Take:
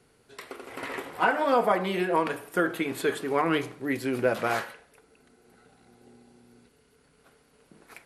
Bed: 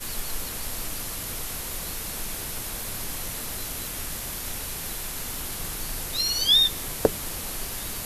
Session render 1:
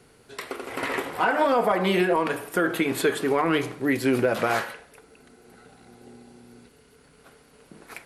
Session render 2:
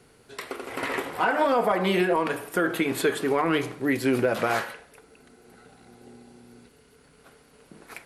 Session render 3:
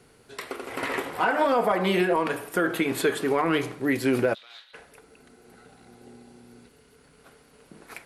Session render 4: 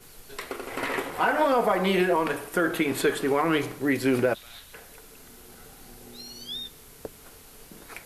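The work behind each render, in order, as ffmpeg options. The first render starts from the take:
-af "acontrast=84,alimiter=limit=-12.5dB:level=0:latency=1:release=149"
-af "volume=-1dB"
-filter_complex "[0:a]asplit=3[a][b][c];[a]afade=t=out:st=4.33:d=0.02[d];[b]bandpass=f=3.7k:t=q:w=8.8,afade=t=in:st=4.33:d=0.02,afade=t=out:st=4.73:d=0.02[e];[c]afade=t=in:st=4.73:d=0.02[f];[d][e][f]amix=inputs=3:normalize=0"
-filter_complex "[1:a]volume=-17.5dB[a];[0:a][a]amix=inputs=2:normalize=0"

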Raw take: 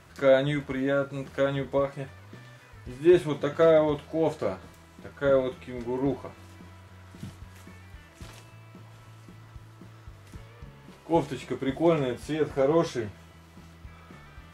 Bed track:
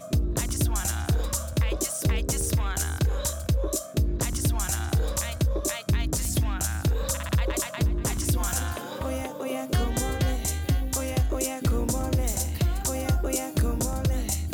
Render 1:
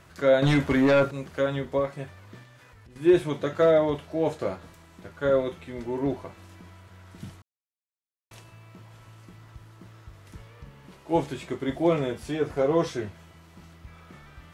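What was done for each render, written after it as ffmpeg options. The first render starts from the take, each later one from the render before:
-filter_complex "[0:a]asettb=1/sr,asplit=3[a][b][c];[a]atrim=end=0.424[d];[b]atrim=start=0.42:end=1.11,asetpts=PTS-STARTPTS,afade=t=in:d=0.004:c=qsin,afade=t=out:st=0.686:d=0.004:c=qsin,aeval=exprs='0.168*sin(PI/2*2*val(0)/0.168)':c=same[e];[c]atrim=start=1.106[f];[d][e]acrossfade=d=0.004:c1=hsin:c2=qsin[g];[g][f]acrossfade=d=0.004:c1=qsin:c2=hsin,asettb=1/sr,asplit=3[h][i][j];[h]atrim=end=2.434[k];[i]atrim=start=2.43:end=2.96,asetpts=PTS-STARTPTS,afade=t=in:d=0.004:c=qsin,afade=t=out:st=0.526:d=0.004:c=qsin,acompressor=threshold=-48dB:ratio=6:attack=3.2:release=140:knee=1:detection=peak[l];[j]atrim=start=2.956[m];[k][l]acrossfade=d=0.004:c1=hsin:c2=qsin[n];[n][m]acrossfade=d=0.004:c1=qsin:c2=hsin,asplit=3[o][p][q];[o]atrim=end=7.42,asetpts=PTS-STARTPTS,afade=t=out:st=7.416:d=0.004:c=hsin[r];[p]atrim=start=7.42:end=8.31,asetpts=PTS-STARTPTS,volume=0[s];[q]atrim=start=8.31,asetpts=PTS-STARTPTS,afade=t=in:d=0.004:c=hsin[t];[r][s][t]concat=n=3:v=0:a=1"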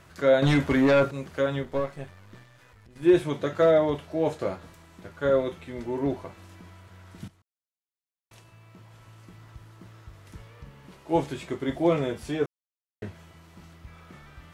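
-filter_complex "[0:a]asettb=1/sr,asplit=3[a][b][c];[a]atrim=end=1.634[d];[b]atrim=start=1.63:end=3.03,asetpts=PTS-STARTPTS,afade=t=in:d=0.004:c=qsin,afade=t=out:st=1.396:d=0.004:c=qsin,aeval=exprs='if(lt(val(0),0),0.447*val(0),val(0))':c=same[e];[c]atrim=start=3.026[f];[d][e]acrossfade=d=0.004:c1=hsin:c2=qsin[g];[g][f]acrossfade=d=0.004:c1=qsin:c2=hsin,asplit=4[h][i][j][k];[h]atrim=end=7.28,asetpts=PTS-STARTPTS,afade=t=out:st=7.276:d=0.004:c=hsin:silence=0.188365[l];[i]atrim=start=7.28:end=12.46,asetpts=PTS-STARTPTS,afade=t=in:d=2.15:silence=0.188365,afade=t=out:st=5.176:d=0.004:c=hsin[m];[j]atrim=start=12.46:end=13.02,asetpts=PTS-STARTPTS,volume=0[n];[k]atrim=start=13.02,asetpts=PTS-STARTPTS,afade=t=in:d=0.004:c=hsin[o];[l][m][n][o]concat=n=4:v=0:a=1"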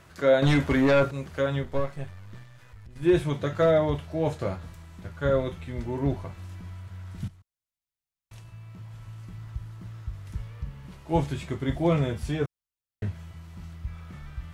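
-af "asubboost=boost=4.5:cutoff=150"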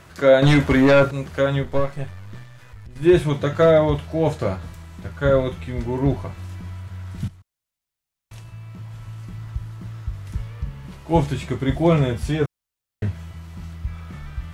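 -af "volume=6.5dB"

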